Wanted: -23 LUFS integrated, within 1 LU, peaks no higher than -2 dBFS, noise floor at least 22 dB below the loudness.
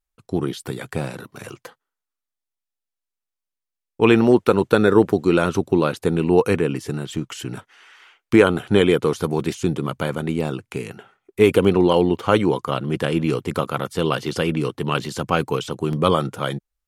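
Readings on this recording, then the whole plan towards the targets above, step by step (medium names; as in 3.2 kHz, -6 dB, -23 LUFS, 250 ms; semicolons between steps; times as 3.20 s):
dropouts 1; longest dropout 1.7 ms; loudness -20.0 LUFS; peak level -2.0 dBFS; loudness target -23.0 LUFS
-> interpolate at 15.93 s, 1.7 ms; trim -3 dB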